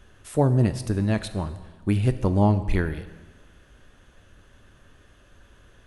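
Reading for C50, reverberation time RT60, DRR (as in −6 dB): 13.0 dB, 1.3 s, 11.0 dB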